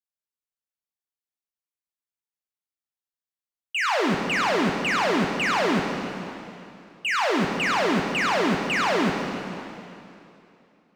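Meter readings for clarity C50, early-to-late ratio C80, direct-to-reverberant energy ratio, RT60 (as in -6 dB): 2.5 dB, 3.5 dB, 1.0 dB, 2.8 s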